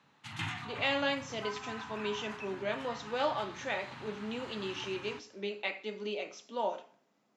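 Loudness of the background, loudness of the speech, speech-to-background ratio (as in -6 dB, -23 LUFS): -44.5 LUFS, -36.5 LUFS, 8.0 dB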